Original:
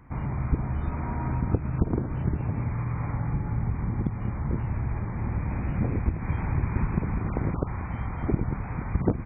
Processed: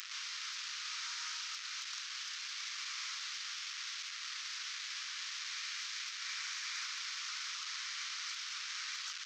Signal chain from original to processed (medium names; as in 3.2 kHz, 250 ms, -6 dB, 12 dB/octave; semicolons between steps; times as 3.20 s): one-bit delta coder 32 kbps, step -34 dBFS; steep high-pass 1.2 kHz 48 dB/octave; differentiator; trim +10 dB